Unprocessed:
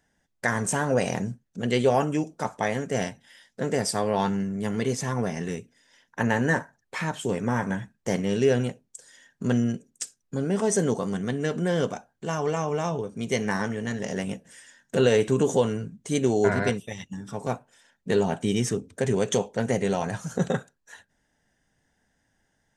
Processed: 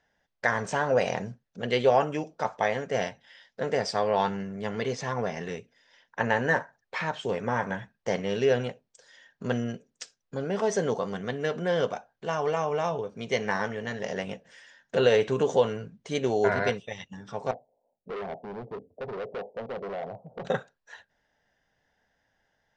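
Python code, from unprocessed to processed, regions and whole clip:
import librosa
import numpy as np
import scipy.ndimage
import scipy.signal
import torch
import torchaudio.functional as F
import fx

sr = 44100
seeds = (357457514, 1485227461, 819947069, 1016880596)

y = fx.chain(x, sr, fx.steep_lowpass(hz=750.0, slope=48),
    fx.low_shelf(hz=240.0, db=-9.5),
    fx.overload_stage(gain_db=31.0), at=(17.51, 20.45))
y = scipy.signal.sosfilt(scipy.signal.butter(4, 5200.0, 'lowpass', fs=sr, output='sos'), y)
y = fx.low_shelf_res(y, sr, hz=400.0, db=-6.0, q=1.5)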